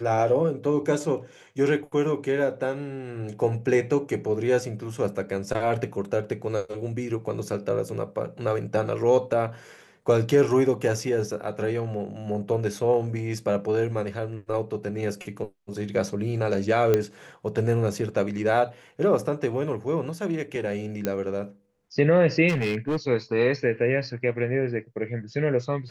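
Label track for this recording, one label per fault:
16.940000	16.940000	pop -9 dBFS
21.050000	21.050000	pop -12 dBFS
22.480000	22.970000	clipped -21.5 dBFS

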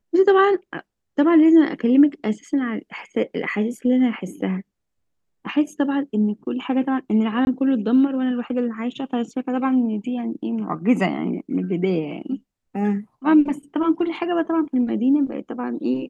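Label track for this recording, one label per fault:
7.450000	7.470000	gap 21 ms

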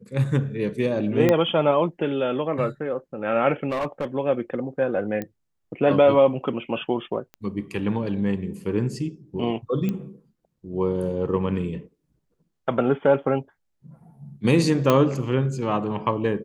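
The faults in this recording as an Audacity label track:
1.290000	1.290000	pop -7 dBFS
3.700000	4.150000	clipped -22 dBFS
5.220000	5.220000	pop -17 dBFS
7.340000	7.340000	pop -25 dBFS
9.890000	9.890000	pop -15 dBFS
14.900000	14.900000	pop -6 dBFS

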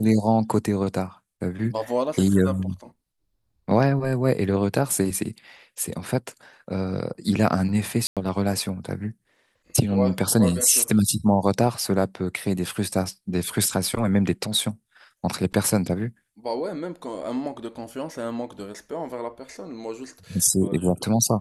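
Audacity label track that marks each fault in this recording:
8.070000	8.170000	gap 97 ms

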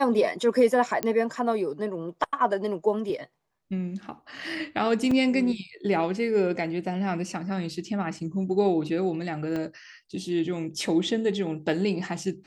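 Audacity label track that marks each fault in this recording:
1.030000	1.030000	pop -12 dBFS
5.110000	5.110000	gap 3.6 ms
9.560000	9.560000	pop -20 dBFS

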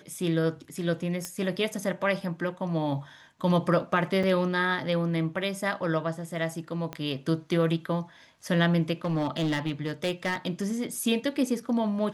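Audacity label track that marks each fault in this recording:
1.250000	1.250000	pop -17 dBFS
4.230000	4.240000	gap 5.4 ms
6.930000	6.930000	pop -20 dBFS
9.040000	11.070000	clipped -23 dBFS

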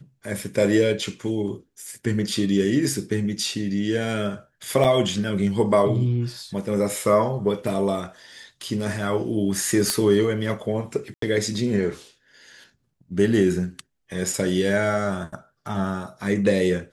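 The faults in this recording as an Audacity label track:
4.840000	4.850000	gap 6.3 ms
9.900000	9.900000	pop -5 dBFS
11.140000	11.220000	gap 83 ms

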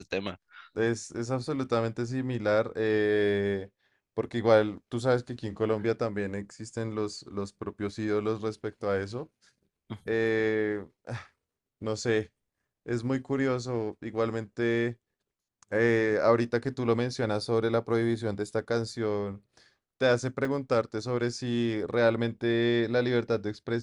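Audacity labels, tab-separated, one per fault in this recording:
20.450000	20.450000	gap 2.5 ms

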